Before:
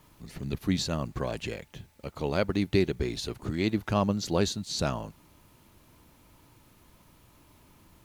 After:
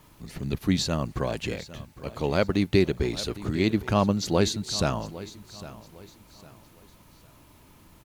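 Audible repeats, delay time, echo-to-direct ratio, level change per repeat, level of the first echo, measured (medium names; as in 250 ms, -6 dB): 2, 806 ms, -16.0 dB, -9.5 dB, -16.5 dB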